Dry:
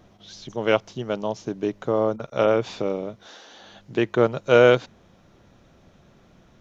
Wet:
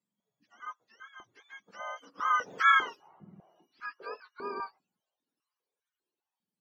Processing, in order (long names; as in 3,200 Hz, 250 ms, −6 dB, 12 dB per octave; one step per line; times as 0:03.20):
frequency axis turned over on the octave scale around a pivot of 790 Hz
source passing by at 0:02.75, 25 m/s, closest 1.7 metres
noise reduction from a noise print of the clip's start 7 dB
high-pass on a step sequencer 5 Hz 200–1,500 Hz
level +2.5 dB